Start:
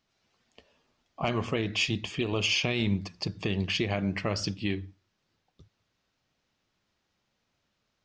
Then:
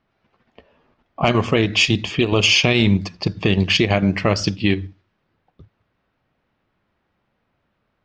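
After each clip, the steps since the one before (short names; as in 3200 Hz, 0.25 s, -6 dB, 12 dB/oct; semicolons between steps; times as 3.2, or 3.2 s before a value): low-pass opened by the level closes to 1900 Hz, open at -23.5 dBFS; in parallel at +2 dB: level quantiser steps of 15 dB; on the sum: gain +6.5 dB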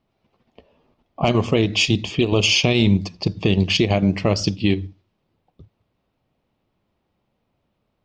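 bell 1600 Hz -11 dB 0.93 oct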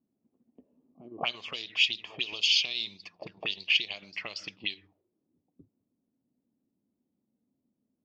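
reverse echo 0.232 s -21.5 dB; auto-wah 250–4500 Hz, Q 4.2, up, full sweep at -13 dBFS; gain +1 dB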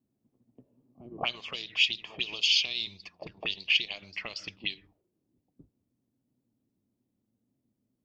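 octaver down 1 oct, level -5 dB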